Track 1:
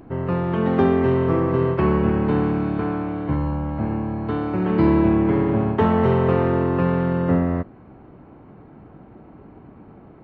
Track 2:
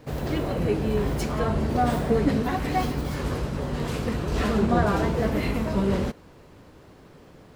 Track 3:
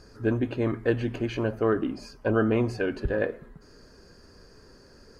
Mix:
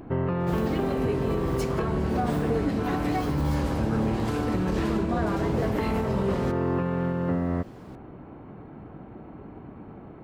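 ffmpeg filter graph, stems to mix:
-filter_complex "[0:a]acompressor=threshold=-23dB:ratio=6,volume=1.5dB[a];[1:a]adelay=400,volume=-1dB[b];[2:a]adelay=1550,volume=-9dB[c];[a][b][c]amix=inputs=3:normalize=0,alimiter=limit=-16.5dB:level=0:latency=1:release=355"

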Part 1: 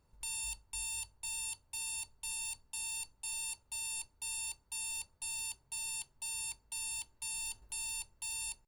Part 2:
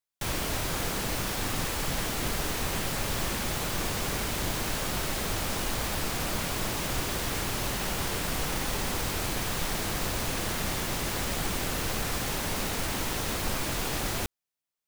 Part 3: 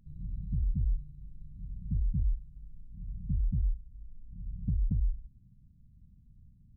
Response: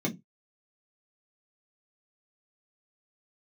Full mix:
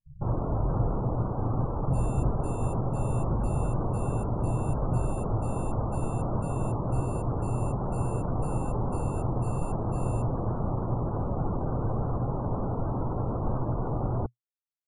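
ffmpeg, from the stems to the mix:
-filter_complex "[0:a]adelay=1700,volume=-7.5dB,asplit=2[a][b];[b]volume=-24dB[c];[1:a]lowpass=f=1.1k:w=0.5412,lowpass=f=1.1k:w=1.3066,volume=2.5dB[d];[2:a]volume=-4dB[e];[3:a]atrim=start_sample=2205[f];[c][f]afir=irnorm=-1:irlink=0[g];[a][d][e][g]amix=inputs=4:normalize=0,afftdn=nr=29:nf=-39,equalizer=f=120:t=o:w=0.45:g=10.5"

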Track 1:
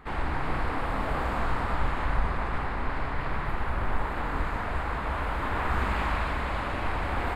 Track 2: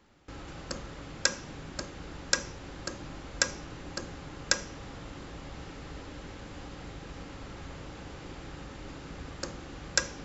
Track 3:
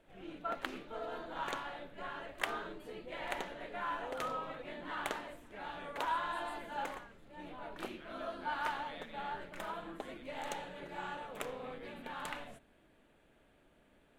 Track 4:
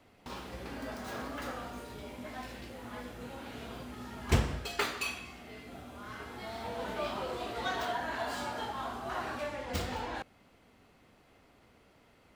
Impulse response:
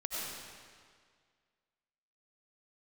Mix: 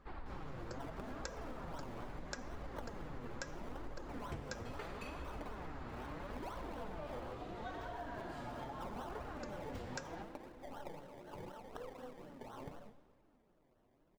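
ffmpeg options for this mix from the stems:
-filter_complex "[0:a]equalizer=f=4.5k:t=o:w=0.77:g=8.5,acompressor=threshold=-29dB:ratio=6,volume=-9dB[a];[1:a]volume=-1.5dB[b];[2:a]acrusher=samples=26:mix=1:aa=0.000001:lfo=1:lforange=15.6:lforate=4,adelay=350,volume=-2dB,asplit=2[c][d];[d]volume=-15.5dB[e];[3:a]volume=-6dB,asplit=2[f][g];[g]volume=-8dB[h];[4:a]atrim=start_sample=2205[i];[e][h]amix=inputs=2:normalize=0[j];[j][i]afir=irnorm=-1:irlink=0[k];[a][b][c][f][k]amix=inputs=5:normalize=0,highshelf=f=2k:g=-12,flanger=delay=1.6:depth=7.3:regen=46:speed=0.76:shape=triangular,acompressor=threshold=-41dB:ratio=6"

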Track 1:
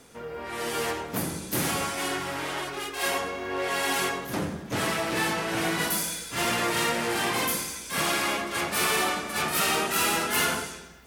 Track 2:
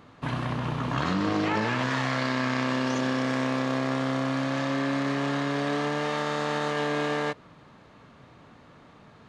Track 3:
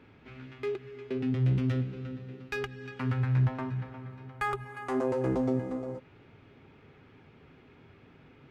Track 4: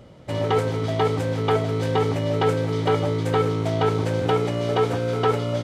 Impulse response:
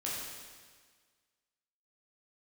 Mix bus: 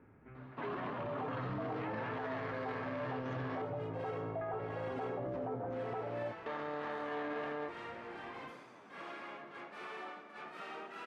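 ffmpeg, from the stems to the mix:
-filter_complex "[0:a]adelay=1000,volume=-18dB[a];[1:a]flanger=delay=6.6:depth=4.3:regen=39:speed=1.1:shape=sinusoidal,adelay=350,volume=0.5dB,asplit=3[b][c][d];[b]atrim=end=3.62,asetpts=PTS-STARTPTS,afade=t=out:st=3.616:d=0.004:c=hsin[e];[c]atrim=start=3.62:end=6.46,asetpts=PTS-STARTPTS,volume=0[f];[d]atrim=start=6.46,asetpts=PTS-STARTPTS,afade=t=in:d=0.004:c=hsin[g];[e][f][g]concat=n=3:v=0:a=1[h];[2:a]volume=-5dB[i];[3:a]equalizer=f=700:t=o:w=1.1:g=14,adelay=700,volume=-14.5dB[j];[i][j]amix=inputs=2:normalize=0,lowpass=f=1.8k:w=0.5412,lowpass=f=1.8k:w=1.3066,acompressor=threshold=-37dB:ratio=3,volume=0dB[k];[a][h]amix=inputs=2:normalize=0,highpass=270,lowpass=2k,alimiter=level_in=4.5dB:limit=-24dB:level=0:latency=1:release=23,volume=-4.5dB,volume=0dB[l];[k][l]amix=inputs=2:normalize=0,alimiter=level_in=8dB:limit=-24dB:level=0:latency=1:release=13,volume=-8dB"

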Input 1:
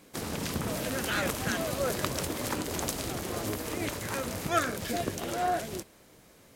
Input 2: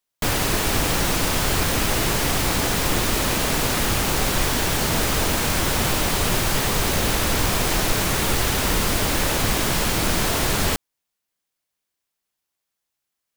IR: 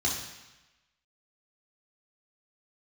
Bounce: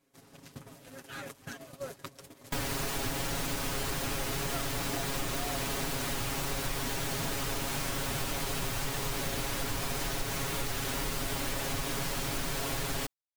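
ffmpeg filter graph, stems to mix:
-filter_complex "[0:a]acompressor=threshold=-40dB:ratio=2.5,volume=-2dB[a];[1:a]adelay=2300,volume=-10dB[b];[a][b]amix=inputs=2:normalize=0,agate=range=-18dB:threshold=-39dB:ratio=16:detection=peak,aecho=1:1:7.3:0.9,acompressor=threshold=-31dB:ratio=3"

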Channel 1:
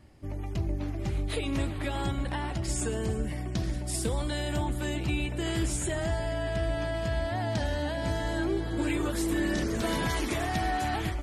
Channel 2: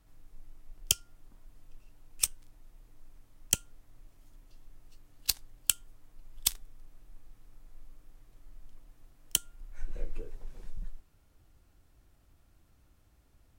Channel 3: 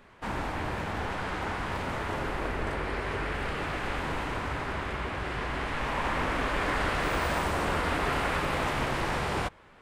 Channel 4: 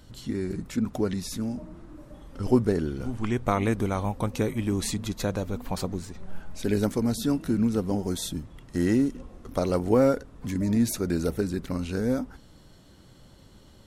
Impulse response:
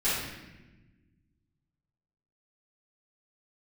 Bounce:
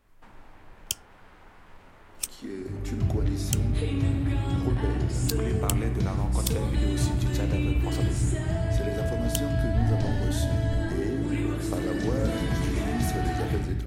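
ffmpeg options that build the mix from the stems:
-filter_complex "[0:a]equalizer=f=100:w=0.47:g=11,adelay=2450,volume=-8dB,asplit=2[a][b];[b]volume=-10.5dB[c];[1:a]volume=-3.5dB[d];[2:a]acompressor=threshold=-36dB:ratio=6,volume=-14.5dB[e];[3:a]highpass=f=220:w=0.5412,highpass=f=220:w=1.3066,acompressor=threshold=-27dB:ratio=3,adelay=2150,volume=-5dB,asplit=2[f][g];[g]volume=-17dB[h];[4:a]atrim=start_sample=2205[i];[c][h]amix=inputs=2:normalize=0[j];[j][i]afir=irnorm=-1:irlink=0[k];[a][d][e][f][k]amix=inputs=5:normalize=0"

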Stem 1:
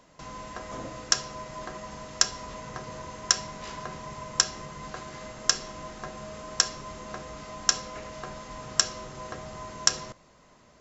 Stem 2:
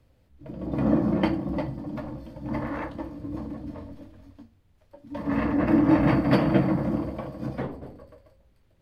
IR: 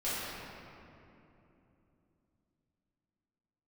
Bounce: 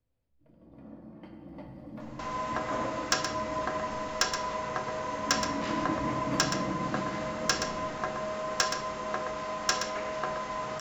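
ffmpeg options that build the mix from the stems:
-filter_complex "[0:a]asplit=2[a][b];[b]highpass=f=720:p=1,volume=17dB,asoftclip=type=tanh:threshold=-1.5dB[c];[a][c]amix=inputs=2:normalize=0,lowpass=f=1.6k:p=1,volume=-6dB,adelay=2000,volume=-2dB,asplit=2[d][e];[e]volume=-8dB[f];[1:a]acompressor=threshold=-38dB:ratio=1.5,volume=-9.5dB,afade=t=in:st=1.23:d=0.78:silence=0.237137,asplit=2[g][h];[h]volume=-7.5dB[i];[2:a]atrim=start_sample=2205[j];[i][j]afir=irnorm=-1:irlink=0[k];[f]aecho=0:1:123:1[l];[d][g][k][l]amix=inputs=4:normalize=0"

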